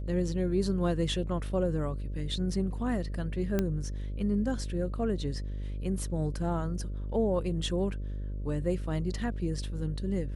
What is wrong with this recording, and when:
buzz 50 Hz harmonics 12 -35 dBFS
3.59 pop -15 dBFS

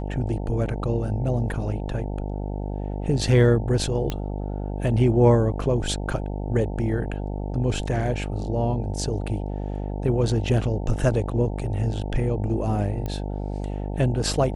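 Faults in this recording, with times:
buzz 50 Hz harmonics 18 -29 dBFS
4.1 pop -13 dBFS
13.06 pop -18 dBFS

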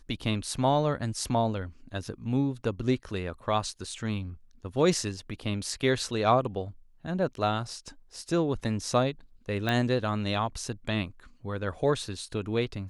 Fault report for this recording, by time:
9.69 pop -15 dBFS

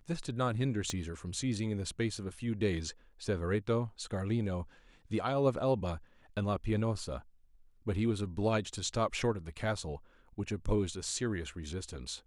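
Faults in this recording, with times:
0.9 pop -21 dBFS

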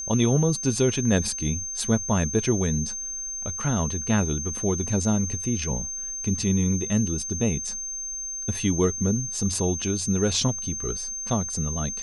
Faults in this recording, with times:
tone 6300 Hz -30 dBFS

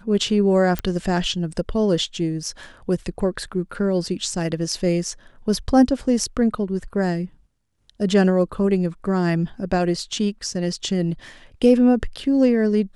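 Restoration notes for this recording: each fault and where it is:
0.79 pop -10 dBFS

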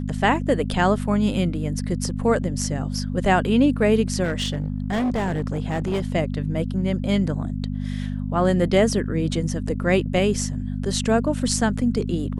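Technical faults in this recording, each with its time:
hum 50 Hz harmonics 5 -27 dBFS
4.23–6.12 clipped -19.5 dBFS

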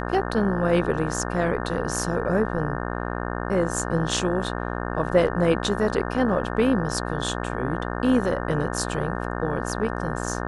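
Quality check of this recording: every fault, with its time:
buzz 60 Hz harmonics 30 -29 dBFS

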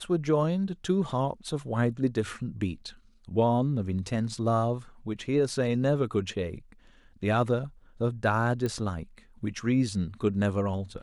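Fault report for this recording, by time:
8.66 pop -19 dBFS

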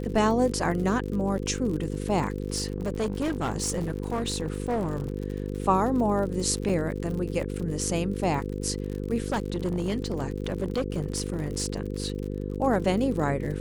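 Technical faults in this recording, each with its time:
buzz 50 Hz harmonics 10 -32 dBFS
crackle 62/s -33 dBFS
2.56–5.14 clipped -23 dBFS
6.69–6.7 gap 5.3 ms
9.2–12.32 clipped -22 dBFS

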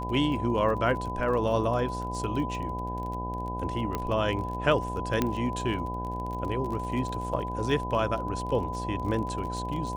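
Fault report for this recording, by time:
buzz 60 Hz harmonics 17 -35 dBFS
crackle 29/s -34 dBFS
tone 1000 Hz -34 dBFS
3.95 pop -16 dBFS
5.22 pop -11 dBFS

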